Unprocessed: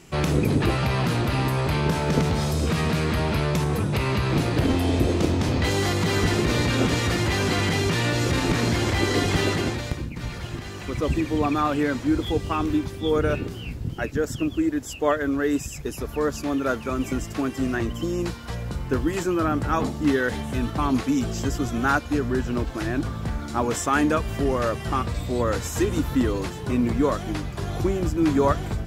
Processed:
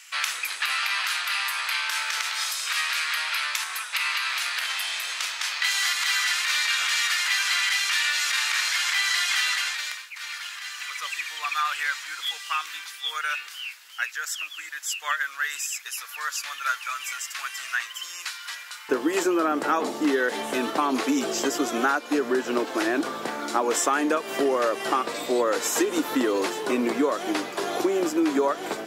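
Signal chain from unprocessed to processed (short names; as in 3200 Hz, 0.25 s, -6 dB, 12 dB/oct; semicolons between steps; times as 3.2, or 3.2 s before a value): HPF 1400 Hz 24 dB/oct, from 18.89 s 320 Hz; compressor 12:1, threshold -26 dBFS, peak gain reduction 10.5 dB; gain +7 dB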